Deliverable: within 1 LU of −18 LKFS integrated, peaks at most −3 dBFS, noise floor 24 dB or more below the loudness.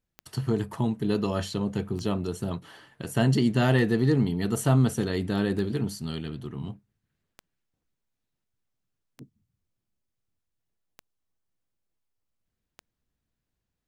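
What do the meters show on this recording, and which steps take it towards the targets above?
number of clicks 8; integrated loudness −27.0 LKFS; sample peak −9.5 dBFS; target loudness −18.0 LKFS
→ click removal
level +9 dB
brickwall limiter −3 dBFS

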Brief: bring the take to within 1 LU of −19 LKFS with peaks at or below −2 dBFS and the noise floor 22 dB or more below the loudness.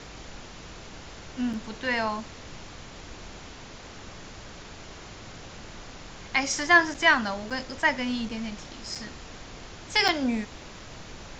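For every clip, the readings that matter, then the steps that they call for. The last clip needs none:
number of dropouts 6; longest dropout 5.8 ms; background noise floor −44 dBFS; target noise floor −48 dBFS; integrated loudness −26.0 LKFS; sample peak −6.5 dBFS; target loudness −19.0 LKFS
→ repair the gap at 0:01.53/0:06.94/0:07.50/0:08.29/0:08.95/0:10.08, 5.8 ms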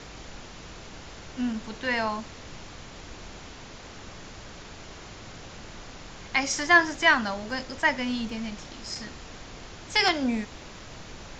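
number of dropouts 0; background noise floor −44 dBFS; target noise floor −48 dBFS
→ noise reduction from a noise print 6 dB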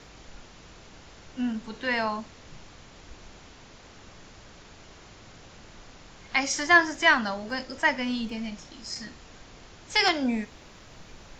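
background noise floor −50 dBFS; integrated loudness −26.0 LKFS; sample peak −6.5 dBFS; target loudness −19.0 LKFS
→ level +7 dB
brickwall limiter −2 dBFS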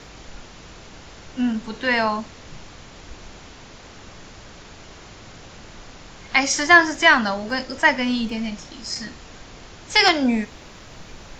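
integrated loudness −19.0 LKFS; sample peak −2.0 dBFS; background noise floor −43 dBFS

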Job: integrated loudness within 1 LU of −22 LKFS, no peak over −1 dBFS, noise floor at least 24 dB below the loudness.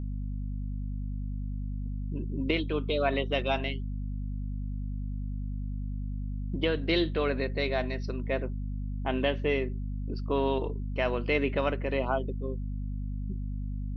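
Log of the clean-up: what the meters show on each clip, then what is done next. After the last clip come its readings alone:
mains hum 50 Hz; hum harmonics up to 250 Hz; level of the hum −31 dBFS; integrated loudness −32.0 LKFS; sample peak −13.0 dBFS; target loudness −22.0 LKFS
→ hum removal 50 Hz, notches 5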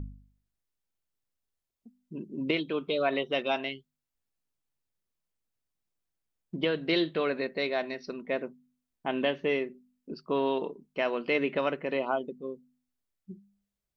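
mains hum none found; integrated loudness −31.0 LKFS; sample peak −14.5 dBFS; target loudness −22.0 LKFS
→ level +9 dB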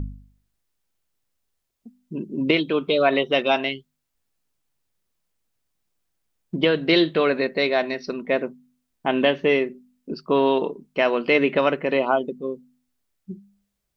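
integrated loudness −22.0 LKFS; sample peak −5.5 dBFS; background noise floor −78 dBFS

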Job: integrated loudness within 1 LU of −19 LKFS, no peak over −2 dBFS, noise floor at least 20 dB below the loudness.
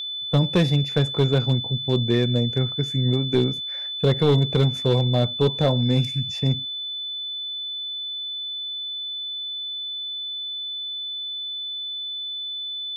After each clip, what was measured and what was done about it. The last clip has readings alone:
share of clipped samples 0.5%; peaks flattened at −11.5 dBFS; interfering tone 3,500 Hz; level of the tone −28 dBFS; integrated loudness −23.5 LKFS; sample peak −11.5 dBFS; target loudness −19.0 LKFS
→ clipped peaks rebuilt −11.5 dBFS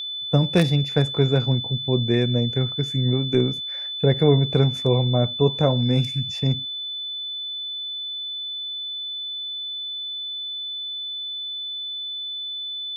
share of clipped samples 0.0%; interfering tone 3,500 Hz; level of the tone −28 dBFS
→ notch filter 3,500 Hz, Q 30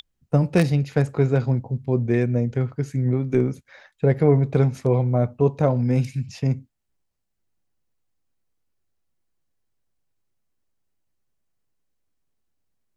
interfering tone none found; integrated loudness −22.0 LKFS; sample peak −3.0 dBFS; target loudness −19.0 LKFS
→ level +3 dB
brickwall limiter −2 dBFS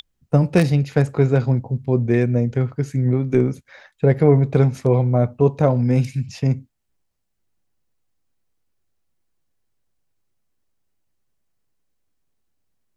integrated loudness −19.0 LKFS; sample peak −2.0 dBFS; background noise floor −72 dBFS

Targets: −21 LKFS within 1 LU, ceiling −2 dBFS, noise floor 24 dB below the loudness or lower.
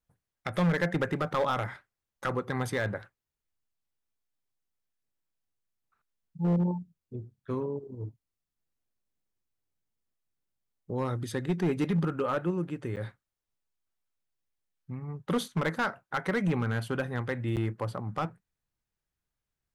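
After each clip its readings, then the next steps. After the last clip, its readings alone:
share of clipped samples 1.0%; peaks flattened at −21.5 dBFS; number of dropouts 2; longest dropout 8.4 ms; integrated loudness −31.5 LKFS; sample peak −21.5 dBFS; target loudness −21.0 LKFS
→ clipped peaks rebuilt −21.5 dBFS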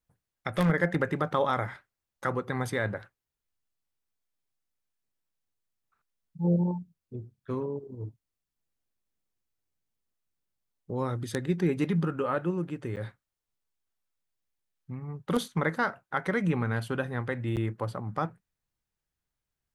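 share of clipped samples 0.0%; number of dropouts 2; longest dropout 8.4 ms
→ repair the gap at 0:12.96/0:17.56, 8.4 ms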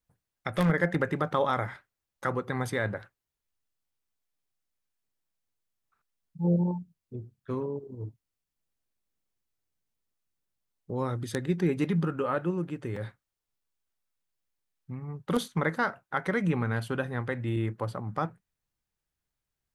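number of dropouts 0; integrated loudness −30.5 LKFS; sample peak −12.5 dBFS; target loudness −21.0 LKFS
→ level +9.5 dB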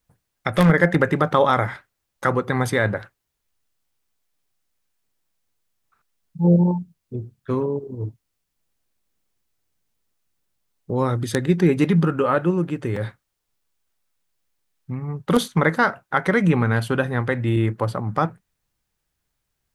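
integrated loudness −21.0 LKFS; sample peak −3.0 dBFS; background noise floor −78 dBFS

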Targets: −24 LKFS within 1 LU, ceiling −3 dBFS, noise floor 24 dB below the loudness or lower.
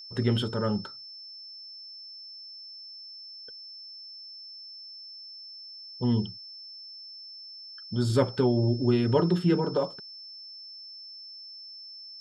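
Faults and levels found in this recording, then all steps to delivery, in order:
interfering tone 5,300 Hz; level of the tone −42 dBFS; integrated loudness −27.0 LKFS; sample peak −11.0 dBFS; target loudness −24.0 LKFS
→ notch filter 5,300 Hz, Q 30
level +3 dB

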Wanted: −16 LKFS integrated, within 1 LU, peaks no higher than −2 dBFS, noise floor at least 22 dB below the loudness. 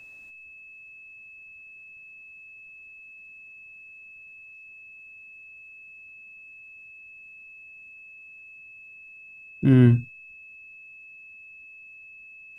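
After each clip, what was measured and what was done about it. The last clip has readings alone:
interfering tone 2,600 Hz; level of the tone −44 dBFS; integrated loudness −19.5 LKFS; sample peak −7.0 dBFS; target loudness −16.0 LKFS
→ notch filter 2,600 Hz, Q 30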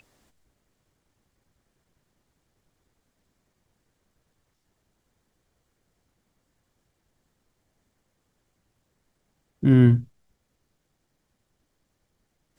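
interfering tone none found; integrated loudness −19.5 LKFS; sample peak −7.0 dBFS; target loudness −16.0 LKFS
→ level +3.5 dB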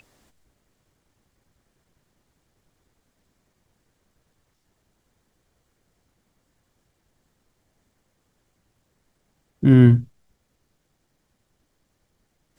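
integrated loudness −16.0 LKFS; sample peak −3.5 dBFS; background noise floor −72 dBFS

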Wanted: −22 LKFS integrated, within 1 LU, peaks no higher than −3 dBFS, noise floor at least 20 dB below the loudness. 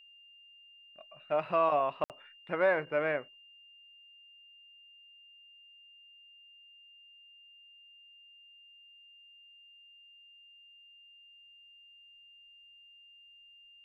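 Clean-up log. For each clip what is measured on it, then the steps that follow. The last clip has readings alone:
number of dropouts 1; longest dropout 58 ms; interfering tone 2,800 Hz; level of the tone −55 dBFS; integrated loudness −31.0 LKFS; sample peak −16.0 dBFS; target loudness −22.0 LKFS
→ repair the gap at 0:02.04, 58 ms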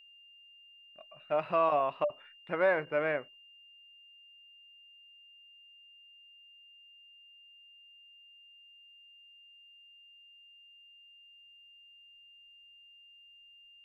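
number of dropouts 0; interfering tone 2,800 Hz; level of the tone −55 dBFS
→ notch filter 2,800 Hz, Q 30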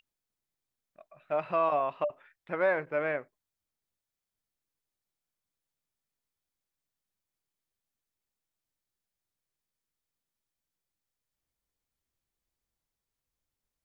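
interfering tone none found; integrated loudness −31.0 LKFS; sample peak −16.0 dBFS; target loudness −22.0 LKFS
→ level +9 dB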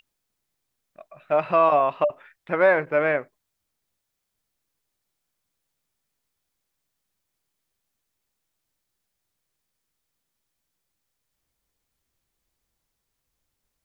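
integrated loudness −22.0 LKFS; sample peak −7.0 dBFS; background noise floor −80 dBFS

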